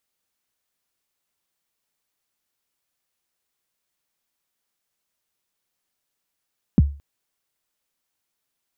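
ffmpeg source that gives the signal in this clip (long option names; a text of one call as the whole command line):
ffmpeg -f lavfi -i "aevalsrc='0.447*pow(10,-3*t/0.35)*sin(2*PI*(270*0.028/log(71/270)*(exp(log(71/270)*min(t,0.028)/0.028)-1)+71*max(t-0.028,0)))':duration=0.22:sample_rate=44100" out.wav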